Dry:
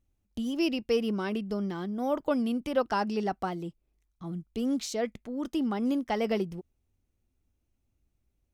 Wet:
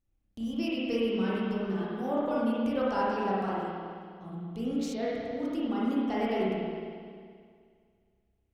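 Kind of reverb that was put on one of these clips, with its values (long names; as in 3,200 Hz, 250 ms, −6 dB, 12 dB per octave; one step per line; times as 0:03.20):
spring reverb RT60 2.1 s, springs 31/52 ms, chirp 75 ms, DRR −7.5 dB
level −8 dB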